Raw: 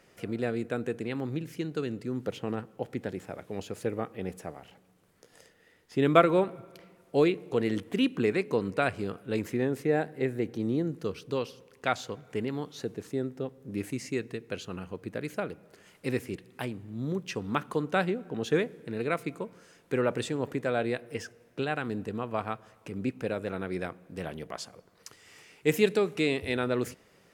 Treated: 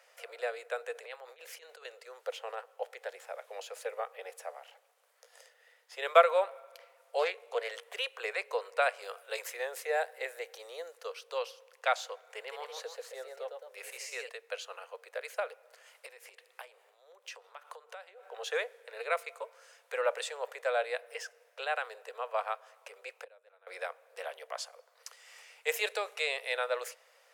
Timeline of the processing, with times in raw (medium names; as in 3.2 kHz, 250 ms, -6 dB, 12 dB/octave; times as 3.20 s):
0.95–1.85 s: compressor with a negative ratio -36 dBFS, ratio -0.5
7.19–7.69 s: loudspeaker Doppler distortion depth 0.14 ms
9.02–10.98 s: treble shelf 3.9 kHz +7.5 dB
12.22–14.29 s: ever faster or slower copies 172 ms, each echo +1 st, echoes 2, each echo -6 dB
16.06–18.31 s: compression 20:1, threshold -39 dBFS
23.24–23.67 s: gate -26 dBFS, range -25 dB
whole clip: steep high-pass 490 Hz 72 dB/octave